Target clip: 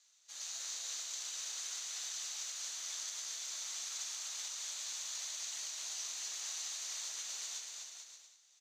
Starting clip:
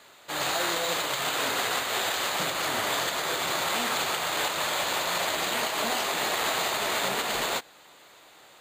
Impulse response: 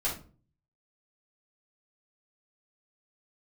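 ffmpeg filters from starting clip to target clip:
-filter_complex "[0:a]bandpass=frequency=5900:width_type=q:width=9.2:csg=0,asplit=2[link_01][link_02];[link_02]aecho=0:1:250|437.5|578.1|683.6|762.7:0.631|0.398|0.251|0.158|0.1[link_03];[link_01][link_03]amix=inputs=2:normalize=0,volume=2.5dB"

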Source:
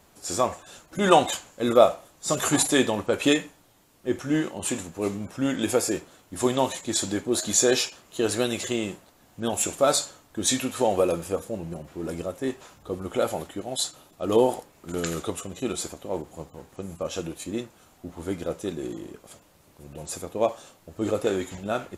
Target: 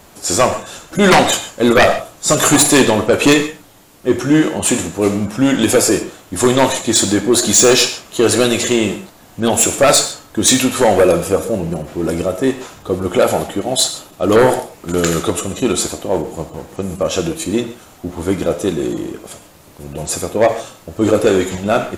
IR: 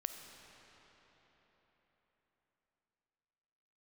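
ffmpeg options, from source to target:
-filter_complex "[0:a]aeval=exprs='0.841*sin(PI/2*4.47*val(0)/0.841)':channel_layout=same,bandreject=frequency=58.28:width_type=h:width=4,bandreject=frequency=116.56:width_type=h:width=4[link_01];[1:a]atrim=start_sample=2205,atrim=end_sample=6615[link_02];[link_01][link_02]afir=irnorm=-1:irlink=0,volume=-1dB"

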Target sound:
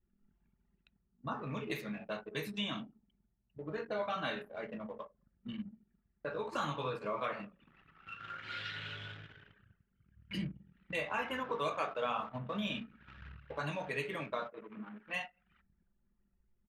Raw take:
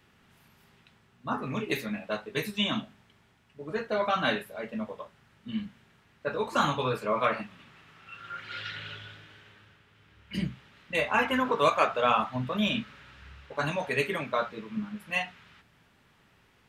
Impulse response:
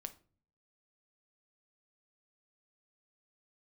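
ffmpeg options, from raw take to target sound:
-filter_complex "[0:a]asettb=1/sr,asplit=3[link_01][link_02][link_03];[link_01]atrim=end=14.484[link_04];[link_02]atrim=start=14.48:end=15.14,asetpts=PTS-STARTPTS,afade=type=in:duration=0.004:curve=qsin,afade=type=out:start_time=0.656:duration=0.004:curve=qsin,highpass=370,lowpass=3100[link_05];[link_03]atrim=start=15.136[link_06];[link_04][link_05]acrossfade=duration=0.004:curve1=hsin:curve2=qsin[link_07];[link_07][link_06]acrossfade=duration=0.004:curve1=qsin:curve2=hsin,acompressor=threshold=-47dB:ratio=2,asplit=2[link_08][link_09];[link_09]adelay=212,lowpass=frequency=1300:poles=1,volume=-20.5dB,asplit=2[link_10][link_11];[link_11]adelay=212,lowpass=frequency=1300:poles=1,volume=0.37,asplit=2[link_12][link_13];[link_13]adelay=212,lowpass=frequency=1300:poles=1,volume=0.37[link_14];[link_08][link_10][link_12][link_14]amix=inputs=4:normalize=0[link_15];[1:a]atrim=start_sample=2205[link_16];[link_15][link_16]afir=irnorm=-1:irlink=0,anlmdn=0.000631,volume=6.5dB"

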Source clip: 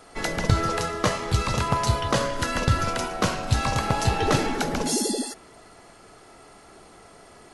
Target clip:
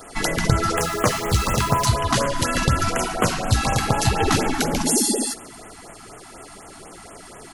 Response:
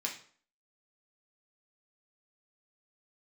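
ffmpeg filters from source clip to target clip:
-filter_complex "[0:a]highshelf=frequency=9400:gain=10,asplit=2[link_01][link_02];[link_02]acompressor=threshold=-30dB:ratio=6,volume=2.5dB[link_03];[link_01][link_03]amix=inputs=2:normalize=0,flanger=delay=2.7:depth=5.6:regen=-68:speed=1.4:shape=triangular,asettb=1/sr,asplit=3[link_04][link_05][link_06];[link_04]atrim=end=0.774[link_07];[link_05]atrim=start=0.77:end=1.86,asetpts=PTS-STARTPTS,afade=type=in:duration=0.004:curve=qsin,afade=type=out:start_time=1.086:duration=0.004:curve=qsin,acrusher=bits=7:dc=4:mix=0:aa=0.000001[link_08];[link_06]atrim=start=1.856[link_09];[link_07][link_08]acrossfade=duration=0.004:curve1=hsin:curve2=qsin[link_10];[link_10][link_09]acrossfade=duration=0.004:curve1=qsin:curve2=hsin,aecho=1:1:136|272|408|544:0.075|0.0405|0.0219|0.0118,afftfilt=real='re*(1-between(b*sr/1024,430*pow(4900/430,0.5+0.5*sin(2*PI*4.1*pts/sr))/1.41,430*pow(4900/430,0.5+0.5*sin(2*PI*4.1*pts/sr))*1.41))':imag='im*(1-between(b*sr/1024,430*pow(4900/430,0.5+0.5*sin(2*PI*4.1*pts/sr))/1.41,430*pow(4900/430,0.5+0.5*sin(2*PI*4.1*pts/sr))*1.41))':win_size=1024:overlap=0.75,volume=5dB"

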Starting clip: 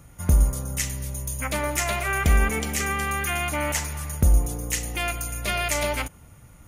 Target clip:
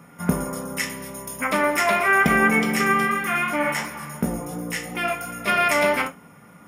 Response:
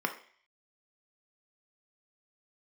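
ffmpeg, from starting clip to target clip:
-filter_complex "[1:a]atrim=start_sample=2205,atrim=end_sample=3528[link_01];[0:a][link_01]afir=irnorm=-1:irlink=0,asplit=3[link_02][link_03][link_04];[link_02]afade=type=out:start_time=3.06:duration=0.02[link_05];[link_03]flanger=delay=16.5:depth=3.1:speed=2.8,afade=type=in:start_time=3.06:duration=0.02,afade=type=out:start_time=5.46:duration=0.02[link_06];[link_04]afade=type=in:start_time=5.46:duration=0.02[link_07];[link_05][link_06][link_07]amix=inputs=3:normalize=0"

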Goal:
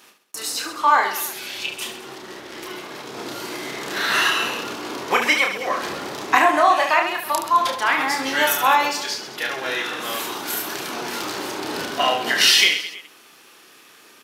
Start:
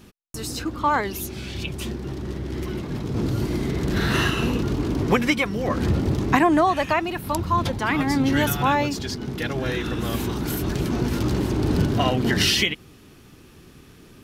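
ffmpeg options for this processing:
ffmpeg -i in.wav -af "highpass=720,aecho=1:1:30|72|130.8|213.1|328.4:0.631|0.398|0.251|0.158|0.1,volume=4.5dB" out.wav

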